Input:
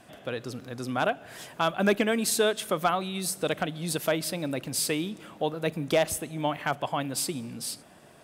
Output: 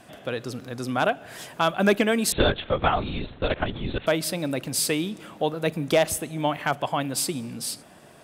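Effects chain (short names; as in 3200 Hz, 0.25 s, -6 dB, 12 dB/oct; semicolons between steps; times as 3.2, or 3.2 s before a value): 2.32–4.07 LPC vocoder at 8 kHz whisper; gain +3.5 dB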